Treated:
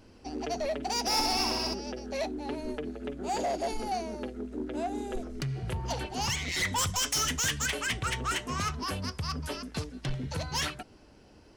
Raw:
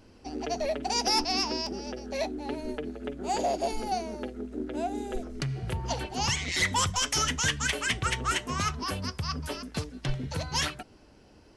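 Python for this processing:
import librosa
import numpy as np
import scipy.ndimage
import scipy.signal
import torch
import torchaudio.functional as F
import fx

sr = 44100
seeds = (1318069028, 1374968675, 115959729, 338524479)

y = fx.high_shelf(x, sr, hz=5400.0, db=9.0, at=(6.78, 7.66))
y = 10.0 ** (-24.5 / 20.0) * np.tanh(y / 10.0 ** (-24.5 / 20.0))
y = fx.room_flutter(y, sr, wall_m=11.1, rt60_s=1.2, at=(1.08, 1.73), fade=0.02)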